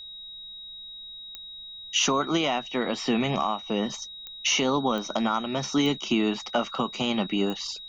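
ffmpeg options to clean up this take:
-af "adeclick=t=4,bandreject=f=3.8k:w=30,agate=range=-21dB:threshold=-34dB"

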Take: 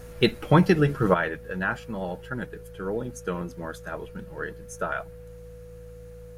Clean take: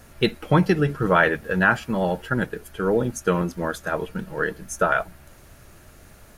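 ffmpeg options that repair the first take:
-af "bandreject=f=55.6:t=h:w=4,bandreject=f=111.2:t=h:w=4,bandreject=f=166.8:t=h:w=4,bandreject=f=490:w=30,asetnsamples=n=441:p=0,asendcmd='1.14 volume volume 9dB',volume=0dB"

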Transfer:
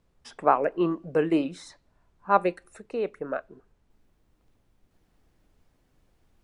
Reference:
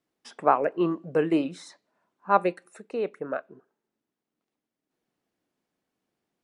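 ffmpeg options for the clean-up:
-af "agate=range=-21dB:threshold=-60dB,asetnsamples=n=441:p=0,asendcmd='3.9 volume volume -8dB',volume=0dB"

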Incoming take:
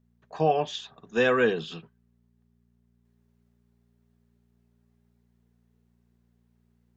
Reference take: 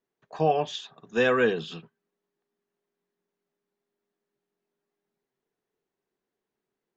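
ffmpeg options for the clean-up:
-af "bandreject=f=58.8:t=h:w=4,bandreject=f=117.6:t=h:w=4,bandreject=f=176.4:t=h:w=4,bandreject=f=235.2:t=h:w=4,asetnsamples=n=441:p=0,asendcmd='3.05 volume volume -5dB',volume=0dB"

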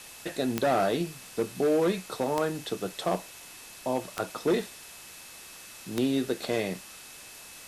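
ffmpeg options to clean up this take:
-af "adeclick=t=4,bandreject=f=2.6k:w=30,afwtdn=0.0056"

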